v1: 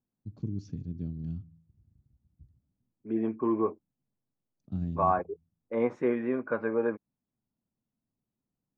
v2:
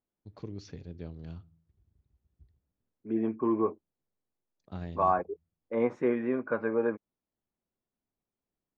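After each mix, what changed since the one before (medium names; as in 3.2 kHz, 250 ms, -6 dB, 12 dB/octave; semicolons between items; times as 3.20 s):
first voice: add graphic EQ 125/250/500/1000/2000/4000 Hz -9/-9/+10/+11/+12/+8 dB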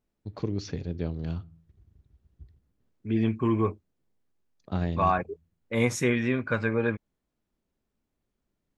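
first voice +10.5 dB; second voice: remove Butterworth band-pass 560 Hz, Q 0.6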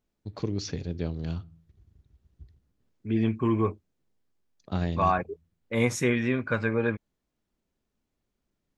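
first voice: add treble shelf 4.1 kHz +9 dB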